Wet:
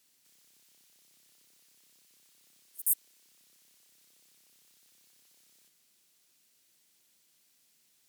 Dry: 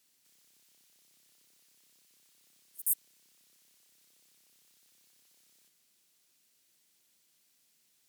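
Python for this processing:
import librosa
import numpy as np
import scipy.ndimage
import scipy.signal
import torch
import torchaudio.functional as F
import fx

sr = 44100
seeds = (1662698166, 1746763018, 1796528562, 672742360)

y = fx.highpass(x, sr, hz=240.0, slope=12, at=(2.67, 3.29))
y = F.gain(torch.from_numpy(y), 2.0).numpy()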